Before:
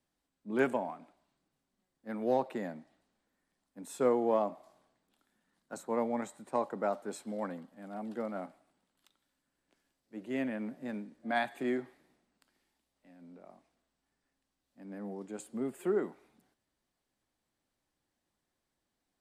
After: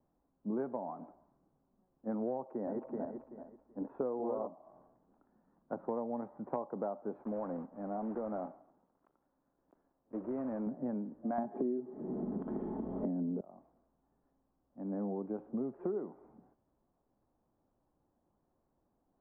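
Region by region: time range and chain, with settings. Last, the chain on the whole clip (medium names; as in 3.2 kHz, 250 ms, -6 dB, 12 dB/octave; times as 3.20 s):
2.48–4.47 s: backward echo that repeats 191 ms, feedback 47%, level -2 dB + low-pass 2.7 kHz + peaking EQ 170 Hz -12 dB 0.3 oct
7.22–10.67 s: block-companded coder 3-bit + tone controls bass -5 dB, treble -2 dB + compression 2.5:1, threshold -41 dBFS
11.38–13.41 s: comb 4.7 ms, depth 34% + upward compressor, threshold -34 dBFS + small resonant body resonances 210/340/3200 Hz, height 16 dB, ringing for 20 ms
whole clip: inverse Chebyshev low-pass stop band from 5.9 kHz, stop band 80 dB; compression 10:1, threshold -42 dBFS; trim +8.5 dB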